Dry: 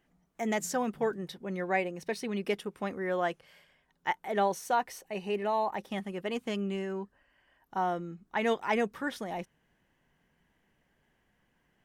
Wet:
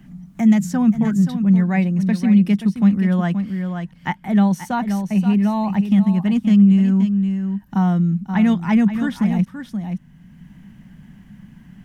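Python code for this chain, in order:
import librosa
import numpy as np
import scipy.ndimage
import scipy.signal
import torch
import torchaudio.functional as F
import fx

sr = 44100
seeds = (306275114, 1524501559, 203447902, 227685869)

p1 = fx.low_shelf_res(x, sr, hz=290.0, db=13.5, q=3.0)
p2 = p1 + fx.echo_single(p1, sr, ms=527, db=-10.0, dry=0)
p3 = fx.band_squash(p2, sr, depth_pct=40)
y = F.gain(torch.from_numpy(p3), 4.0).numpy()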